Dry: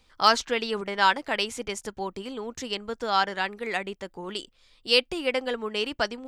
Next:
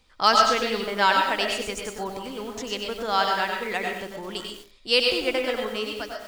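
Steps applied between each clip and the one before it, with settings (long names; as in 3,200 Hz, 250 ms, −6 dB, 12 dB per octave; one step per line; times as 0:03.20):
fade-out on the ending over 0.70 s
comb and all-pass reverb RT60 0.4 s, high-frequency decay 0.45×, pre-delay 75 ms, DRR 2.5 dB
feedback echo at a low word length 94 ms, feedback 35%, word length 7 bits, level −6 dB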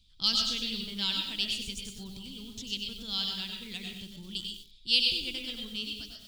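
drawn EQ curve 170 Hz 0 dB, 600 Hz −30 dB, 1,900 Hz −23 dB, 3,400 Hz +3 dB, 6,200 Hz −6 dB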